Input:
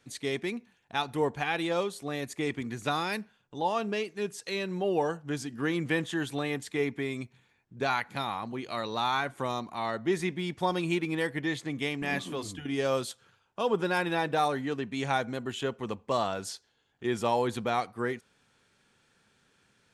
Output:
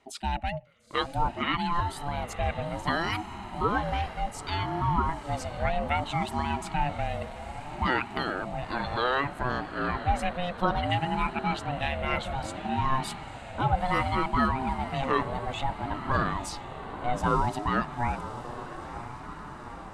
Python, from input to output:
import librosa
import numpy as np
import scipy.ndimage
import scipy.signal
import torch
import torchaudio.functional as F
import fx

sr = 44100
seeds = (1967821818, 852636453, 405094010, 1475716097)

y = fx.envelope_sharpen(x, sr, power=1.5)
y = fx.peak_eq(y, sr, hz=5900.0, db=-3.5, octaves=0.77)
y = fx.echo_diffused(y, sr, ms=942, feedback_pct=68, wet_db=-12.0)
y = fx.ring_lfo(y, sr, carrier_hz=440.0, swing_pct=20, hz=0.62)
y = y * librosa.db_to_amplitude(5.0)